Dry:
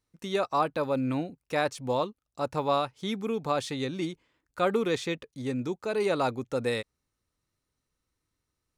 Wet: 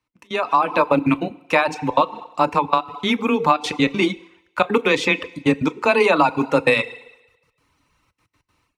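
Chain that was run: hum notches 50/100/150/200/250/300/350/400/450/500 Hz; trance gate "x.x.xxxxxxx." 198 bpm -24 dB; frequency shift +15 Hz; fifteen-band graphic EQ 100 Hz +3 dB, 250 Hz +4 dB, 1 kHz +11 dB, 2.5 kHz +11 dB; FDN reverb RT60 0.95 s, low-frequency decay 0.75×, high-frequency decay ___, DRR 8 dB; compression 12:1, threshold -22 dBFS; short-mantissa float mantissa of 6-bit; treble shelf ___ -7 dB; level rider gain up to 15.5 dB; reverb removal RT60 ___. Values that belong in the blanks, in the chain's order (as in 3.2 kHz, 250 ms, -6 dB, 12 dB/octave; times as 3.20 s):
1×, 8.3 kHz, 0.58 s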